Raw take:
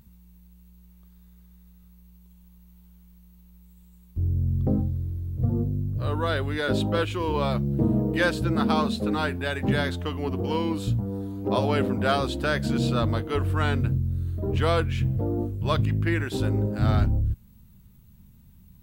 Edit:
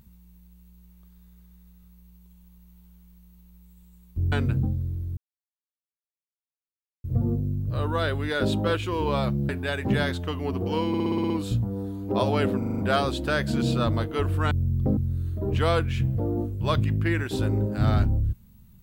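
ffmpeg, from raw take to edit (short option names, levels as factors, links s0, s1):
-filter_complex "[0:a]asplit=19[s0][s1][s2][s3][s4][s5][s6][s7][s8][s9][s10][s11][s12][s13][s14][s15][s16][s17][s18];[s0]atrim=end=4.322[s19];[s1]atrim=start=13.668:end=13.982[s20];[s2]atrim=start=4.778:end=5.32,asetpts=PTS-STARTPTS,afade=t=out:st=0.538:d=0.004:c=hsin,apad=pad_dur=1.87[s21];[s3]atrim=start=5.32:end=7.772,asetpts=PTS-STARTPTS,afade=t=in:d=0.004:c=hsin[s22];[s4]atrim=start=9.268:end=10.722[s23];[s5]atrim=start=10.658:end=10.722[s24];[s6]atrim=start=10.658:end=10.722[s25];[s7]atrim=start=10.658:end=10.722[s26];[s8]atrim=start=10.658:end=10.722[s27];[s9]atrim=start=10.658:end=10.722[s28];[s10]atrim=start=10.658:end=10.722[s29];[s11]atrim=start=10.658:end=11.982[s30];[s12]atrim=start=11.938:end=11.982[s31];[s13]atrim=start=11.938:end=11.982[s32];[s14]atrim=start=11.938:end=11.982[s33];[s15]atrim=start=11.938:end=11.982[s34];[s16]atrim=start=11.938:end=13.672[s35];[s17]atrim=start=4.318:end=4.782[s36];[s18]atrim=start=13.978[s37];[s19][s20]acrossfade=d=0.004:c1=hsin:c2=hsin[s38];[s21][s22]concat=n=2:v=0:a=1[s39];[s38][s39]acrossfade=d=0.004:c1=hsin:c2=hsin[s40];[s40][s23]acrossfade=d=0.004:c1=hsin:c2=hsin[s41];[s41][s24]acrossfade=d=0.004:c1=hsin:c2=hsin[s42];[s42][s25]acrossfade=d=0.004:c1=hsin:c2=hsin[s43];[s43][s26]acrossfade=d=0.004:c1=hsin:c2=hsin[s44];[s44][s27]acrossfade=d=0.004:c1=hsin:c2=hsin[s45];[s45][s28]acrossfade=d=0.004:c1=hsin:c2=hsin[s46];[s46][s29]acrossfade=d=0.004:c1=hsin:c2=hsin[s47];[s47][s30]acrossfade=d=0.004:c1=hsin:c2=hsin[s48];[s48][s31]acrossfade=d=0.004:c1=hsin:c2=hsin[s49];[s49][s32]acrossfade=d=0.004:c1=hsin:c2=hsin[s50];[s50][s33]acrossfade=d=0.004:c1=hsin:c2=hsin[s51];[s51][s34]acrossfade=d=0.004:c1=hsin:c2=hsin[s52];[s52][s35]acrossfade=d=0.004:c1=hsin:c2=hsin[s53];[s53][s36]acrossfade=d=0.004:c1=hsin:c2=hsin[s54];[s54][s37]acrossfade=d=0.004:c1=hsin:c2=hsin"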